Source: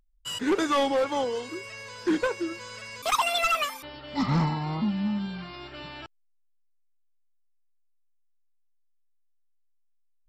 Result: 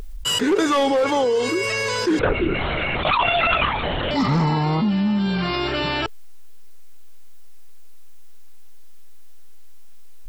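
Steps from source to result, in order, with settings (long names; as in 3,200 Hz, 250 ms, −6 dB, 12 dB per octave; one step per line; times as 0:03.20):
parametric band 430 Hz +8 dB 0.34 octaves
0:02.19–0:04.11: linear-prediction vocoder at 8 kHz whisper
envelope flattener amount 70%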